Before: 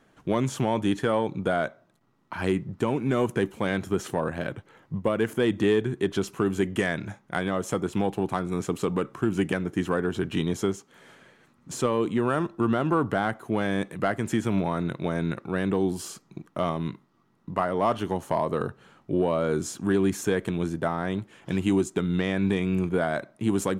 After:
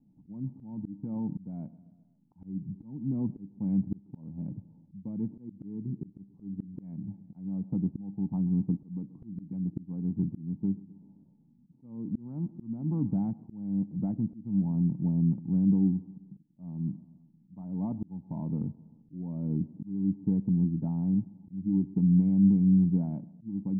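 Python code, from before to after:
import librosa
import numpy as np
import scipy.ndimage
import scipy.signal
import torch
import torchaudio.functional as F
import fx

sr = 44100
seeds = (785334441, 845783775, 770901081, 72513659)

y = fx.wiener(x, sr, points=25)
y = fx.formant_cascade(y, sr, vowel='u')
y = fx.low_shelf_res(y, sr, hz=260.0, db=11.0, q=3.0)
y = fx.echo_feedback(y, sr, ms=131, feedback_pct=59, wet_db=-23.0)
y = fx.auto_swell(y, sr, attack_ms=440.0)
y = y * 10.0 ** (-1.5 / 20.0)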